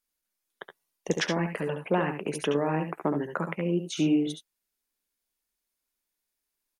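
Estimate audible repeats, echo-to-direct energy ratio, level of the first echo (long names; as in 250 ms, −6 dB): 1, −6.0 dB, −7.5 dB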